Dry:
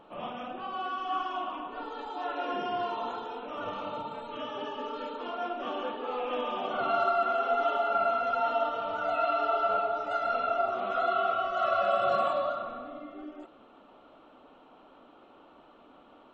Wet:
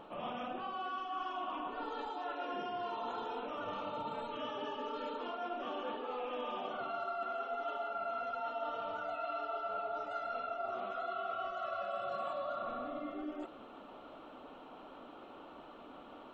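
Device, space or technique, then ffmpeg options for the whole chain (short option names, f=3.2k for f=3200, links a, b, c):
compression on the reversed sound: -af "areverse,acompressor=threshold=-41dB:ratio=6,areverse,volume=3.5dB"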